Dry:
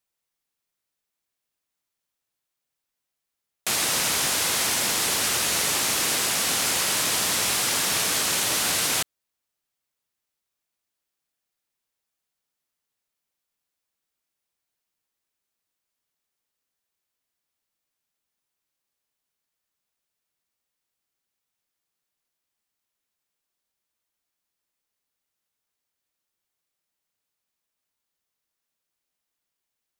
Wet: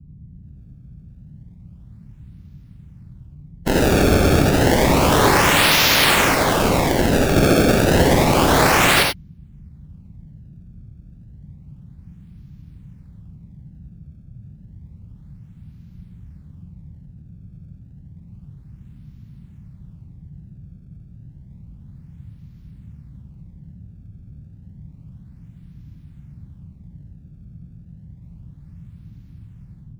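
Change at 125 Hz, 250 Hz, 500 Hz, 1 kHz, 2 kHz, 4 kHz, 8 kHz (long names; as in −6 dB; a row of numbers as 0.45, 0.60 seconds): +22.5, +20.0, +17.5, +12.5, +9.0, +3.5, −3.0 decibels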